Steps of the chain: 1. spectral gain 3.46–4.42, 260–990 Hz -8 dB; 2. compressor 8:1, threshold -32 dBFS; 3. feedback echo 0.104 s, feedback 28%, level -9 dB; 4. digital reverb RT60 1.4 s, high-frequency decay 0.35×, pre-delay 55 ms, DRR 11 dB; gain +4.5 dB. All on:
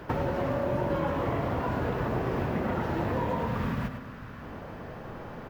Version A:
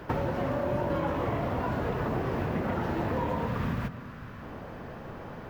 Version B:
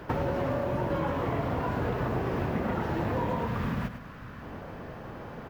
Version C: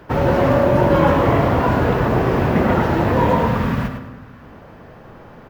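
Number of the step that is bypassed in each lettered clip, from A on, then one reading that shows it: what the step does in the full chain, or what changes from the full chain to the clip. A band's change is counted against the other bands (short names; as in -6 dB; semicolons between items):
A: 3, echo-to-direct -6.0 dB to -11.0 dB; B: 4, echo-to-direct -6.0 dB to -8.5 dB; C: 2, mean gain reduction 9.0 dB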